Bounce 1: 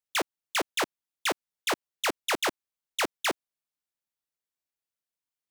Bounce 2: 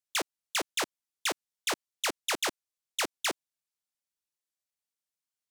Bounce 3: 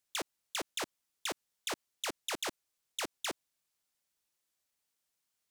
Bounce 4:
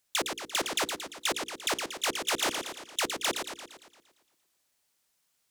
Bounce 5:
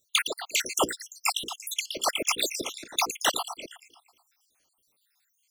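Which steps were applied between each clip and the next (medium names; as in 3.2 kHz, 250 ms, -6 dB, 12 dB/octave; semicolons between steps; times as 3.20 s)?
peaking EQ 7.2 kHz +6.5 dB 2.3 oct; trim -5 dB
compressor with a negative ratio -33 dBFS, ratio -0.5; peak limiter -25 dBFS, peak gain reduction 8 dB; trim +1.5 dB
de-hum 61.56 Hz, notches 8; modulated delay 115 ms, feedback 55%, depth 139 cents, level -6 dB; trim +7.5 dB
random holes in the spectrogram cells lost 71%; trim +8.5 dB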